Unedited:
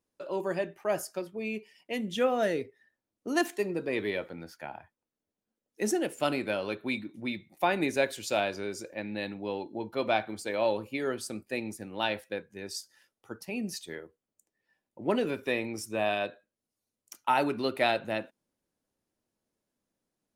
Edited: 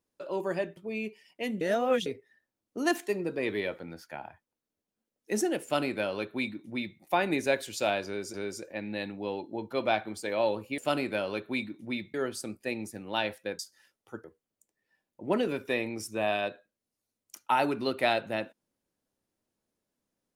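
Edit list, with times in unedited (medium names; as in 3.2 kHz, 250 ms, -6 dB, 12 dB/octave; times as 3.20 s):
0.77–1.27 s: delete
2.11–2.56 s: reverse
6.13–7.49 s: copy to 11.00 s
8.56–8.84 s: loop, 2 plays
12.45–12.76 s: delete
13.41–14.02 s: delete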